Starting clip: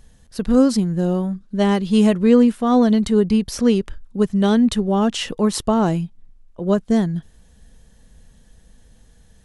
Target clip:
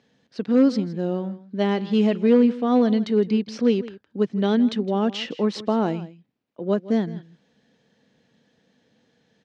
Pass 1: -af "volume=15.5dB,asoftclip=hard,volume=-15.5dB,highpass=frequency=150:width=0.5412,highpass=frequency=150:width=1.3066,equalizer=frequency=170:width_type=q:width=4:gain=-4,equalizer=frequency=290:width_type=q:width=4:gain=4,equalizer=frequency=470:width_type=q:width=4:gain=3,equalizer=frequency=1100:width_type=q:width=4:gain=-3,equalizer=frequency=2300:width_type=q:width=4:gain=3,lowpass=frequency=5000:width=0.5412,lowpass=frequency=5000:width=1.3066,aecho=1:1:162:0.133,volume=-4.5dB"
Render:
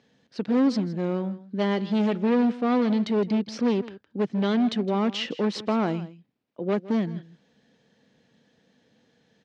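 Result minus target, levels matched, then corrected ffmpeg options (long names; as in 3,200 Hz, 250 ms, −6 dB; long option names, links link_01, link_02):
gain into a clipping stage and back: distortion +17 dB
-af "volume=7dB,asoftclip=hard,volume=-7dB,highpass=frequency=150:width=0.5412,highpass=frequency=150:width=1.3066,equalizer=frequency=170:width_type=q:width=4:gain=-4,equalizer=frequency=290:width_type=q:width=4:gain=4,equalizer=frequency=470:width_type=q:width=4:gain=3,equalizer=frequency=1100:width_type=q:width=4:gain=-3,equalizer=frequency=2300:width_type=q:width=4:gain=3,lowpass=frequency=5000:width=0.5412,lowpass=frequency=5000:width=1.3066,aecho=1:1:162:0.133,volume=-4.5dB"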